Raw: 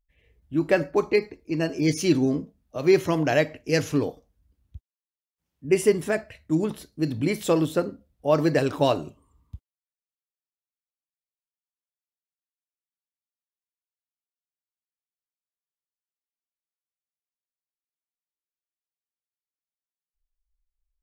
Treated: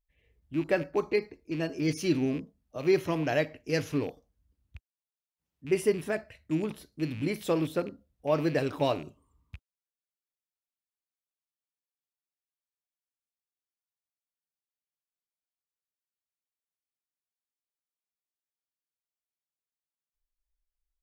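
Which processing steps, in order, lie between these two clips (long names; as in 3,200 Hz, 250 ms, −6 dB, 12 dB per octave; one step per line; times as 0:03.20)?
loose part that buzzes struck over −32 dBFS, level −30 dBFS
dynamic equaliser 7,300 Hz, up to −6 dB, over −55 dBFS, Q 2.6
level −6 dB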